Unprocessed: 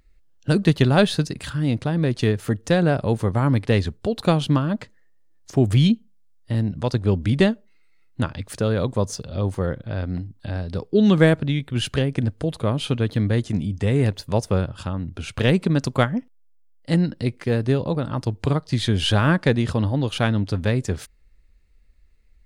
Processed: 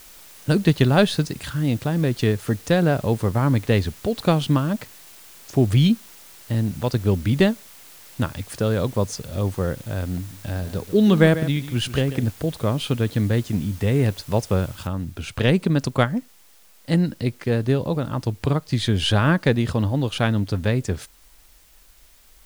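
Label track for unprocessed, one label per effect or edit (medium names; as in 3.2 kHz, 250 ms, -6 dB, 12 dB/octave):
10.180000	12.320000	delay 141 ms -13 dB
14.870000	14.870000	noise floor step -46 dB -55 dB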